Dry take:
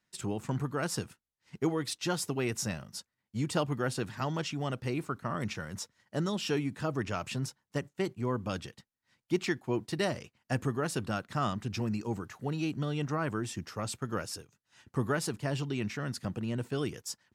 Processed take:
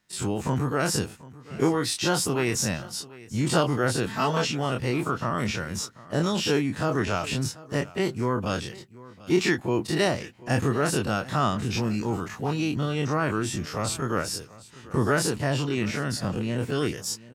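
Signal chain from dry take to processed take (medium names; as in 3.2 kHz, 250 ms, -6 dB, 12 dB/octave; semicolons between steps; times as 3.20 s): every event in the spectrogram widened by 60 ms; 4.06–4.47 s: comb 4.5 ms, depth 77%; on a send: delay 739 ms -20 dB; on the sum: trim +4 dB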